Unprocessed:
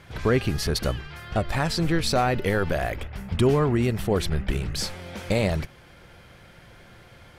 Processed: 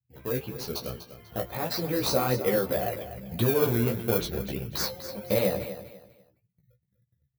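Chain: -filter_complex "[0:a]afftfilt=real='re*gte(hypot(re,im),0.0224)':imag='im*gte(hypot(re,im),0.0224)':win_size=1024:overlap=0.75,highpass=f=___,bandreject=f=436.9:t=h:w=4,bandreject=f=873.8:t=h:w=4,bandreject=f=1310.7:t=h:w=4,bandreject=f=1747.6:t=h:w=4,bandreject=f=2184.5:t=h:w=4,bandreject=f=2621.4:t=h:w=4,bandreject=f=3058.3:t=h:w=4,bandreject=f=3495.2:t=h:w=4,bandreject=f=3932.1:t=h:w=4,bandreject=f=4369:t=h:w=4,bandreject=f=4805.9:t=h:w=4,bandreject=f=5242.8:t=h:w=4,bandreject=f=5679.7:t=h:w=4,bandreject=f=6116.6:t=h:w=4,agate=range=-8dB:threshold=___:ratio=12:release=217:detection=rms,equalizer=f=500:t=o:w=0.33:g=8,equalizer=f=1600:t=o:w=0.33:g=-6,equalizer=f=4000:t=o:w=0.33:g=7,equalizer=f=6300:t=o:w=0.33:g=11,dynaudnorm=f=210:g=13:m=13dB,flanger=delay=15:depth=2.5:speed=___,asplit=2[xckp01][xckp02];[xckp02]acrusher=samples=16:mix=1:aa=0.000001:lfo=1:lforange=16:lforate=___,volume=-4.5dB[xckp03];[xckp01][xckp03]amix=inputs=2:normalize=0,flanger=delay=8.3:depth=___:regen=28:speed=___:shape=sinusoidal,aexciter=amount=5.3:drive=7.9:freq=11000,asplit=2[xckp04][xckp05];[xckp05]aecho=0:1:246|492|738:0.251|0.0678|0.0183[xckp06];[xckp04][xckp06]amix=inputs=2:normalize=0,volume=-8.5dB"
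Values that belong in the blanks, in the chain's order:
120, -57dB, 0.4, 0.32, 7.9, 1.7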